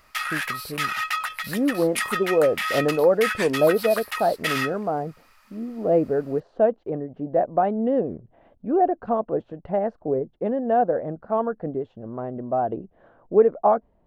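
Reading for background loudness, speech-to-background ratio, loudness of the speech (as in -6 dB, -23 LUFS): -28.0 LUFS, 4.5 dB, -23.5 LUFS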